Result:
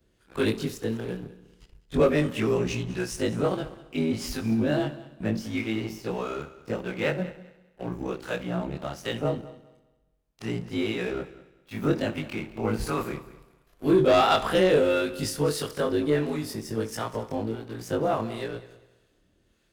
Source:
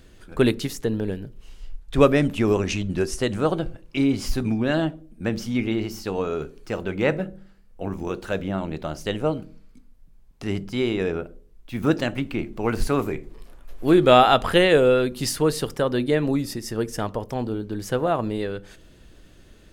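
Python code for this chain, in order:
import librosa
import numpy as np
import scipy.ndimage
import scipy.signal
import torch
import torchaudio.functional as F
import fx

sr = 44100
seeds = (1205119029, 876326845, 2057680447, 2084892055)

p1 = fx.frame_reverse(x, sr, frame_ms=54.0)
p2 = fx.highpass(p1, sr, hz=70.0, slope=6)
p3 = fx.leveller(p2, sr, passes=2)
p4 = fx.harmonic_tremolo(p3, sr, hz=1.5, depth_pct=50, crossover_hz=750.0)
p5 = p4 + fx.echo_heads(p4, sr, ms=66, heads='first and third', feedback_pct=41, wet_db=-18.0, dry=0)
y = F.gain(torch.from_numpy(p5), -5.0).numpy()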